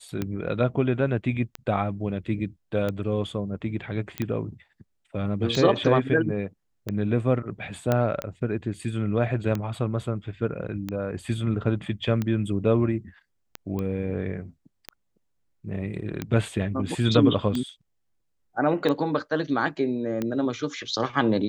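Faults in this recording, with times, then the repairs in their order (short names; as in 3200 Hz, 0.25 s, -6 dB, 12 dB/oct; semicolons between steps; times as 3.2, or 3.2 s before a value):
tick 45 rpm -15 dBFS
4.18 pop -15 dBFS
7.92 pop -10 dBFS
13.79 pop -19 dBFS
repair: de-click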